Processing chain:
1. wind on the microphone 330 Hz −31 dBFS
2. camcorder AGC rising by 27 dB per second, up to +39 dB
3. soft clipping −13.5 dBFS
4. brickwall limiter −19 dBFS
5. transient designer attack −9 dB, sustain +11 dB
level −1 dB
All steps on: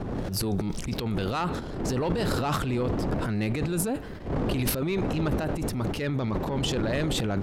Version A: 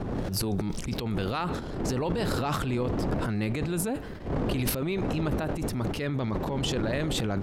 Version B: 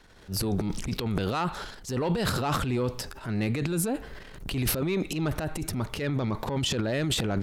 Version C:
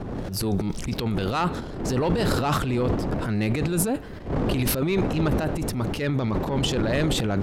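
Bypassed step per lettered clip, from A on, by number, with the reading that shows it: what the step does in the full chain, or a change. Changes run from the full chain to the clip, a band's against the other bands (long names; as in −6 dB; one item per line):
3, distortion level −18 dB
1, 4 kHz band +2.5 dB
4, average gain reduction 2.0 dB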